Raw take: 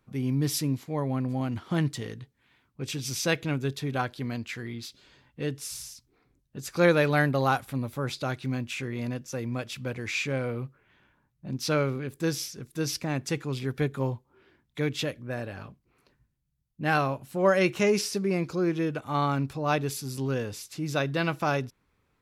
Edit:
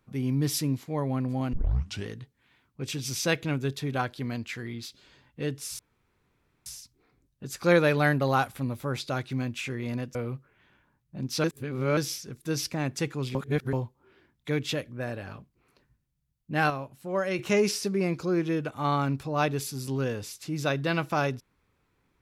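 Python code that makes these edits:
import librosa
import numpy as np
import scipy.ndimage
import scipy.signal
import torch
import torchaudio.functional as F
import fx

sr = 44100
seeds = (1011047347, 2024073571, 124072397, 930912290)

y = fx.edit(x, sr, fx.tape_start(start_s=1.53, length_s=0.54),
    fx.insert_room_tone(at_s=5.79, length_s=0.87),
    fx.cut(start_s=9.28, length_s=1.17),
    fx.reverse_span(start_s=11.74, length_s=0.53),
    fx.reverse_span(start_s=13.65, length_s=0.38),
    fx.clip_gain(start_s=17.0, length_s=0.69, db=-6.5), tone=tone)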